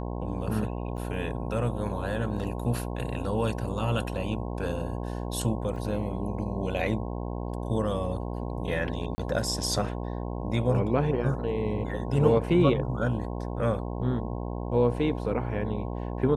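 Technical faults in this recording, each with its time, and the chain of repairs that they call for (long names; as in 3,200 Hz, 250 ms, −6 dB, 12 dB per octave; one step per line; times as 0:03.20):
mains buzz 60 Hz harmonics 18 −33 dBFS
0:00.97–0:00.98: drop-out 8.1 ms
0:05.76: drop-out 2.3 ms
0:09.15–0:09.18: drop-out 30 ms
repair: hum removal 60 Hz, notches 18
repair the gap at 0:00.97, 8.1 ms
repair the gap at 0:05.76, 2.3 ms
repair the gap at 0:09.15, 30 ms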